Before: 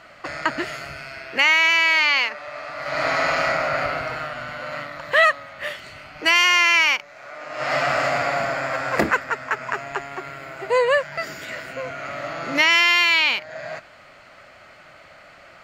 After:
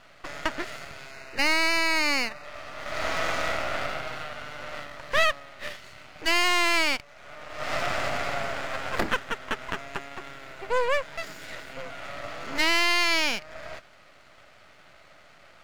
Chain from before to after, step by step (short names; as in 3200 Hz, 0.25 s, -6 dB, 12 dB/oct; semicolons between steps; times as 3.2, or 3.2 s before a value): half-wave rectifier; 1.11–2.45 Butterworth band-stop 3300 Hz, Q 4.6; gain -3 dB